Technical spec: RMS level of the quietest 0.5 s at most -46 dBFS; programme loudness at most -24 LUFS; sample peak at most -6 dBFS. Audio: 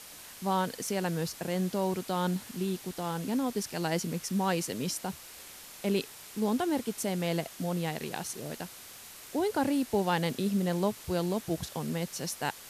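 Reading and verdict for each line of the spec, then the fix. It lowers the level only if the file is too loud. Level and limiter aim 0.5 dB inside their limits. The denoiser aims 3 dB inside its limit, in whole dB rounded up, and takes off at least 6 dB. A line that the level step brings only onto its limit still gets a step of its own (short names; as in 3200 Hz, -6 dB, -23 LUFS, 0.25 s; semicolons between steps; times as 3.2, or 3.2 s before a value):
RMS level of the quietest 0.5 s -48 dBFS: OK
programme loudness -32.0 LUFS: OK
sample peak -13.0 dBFS: OK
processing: none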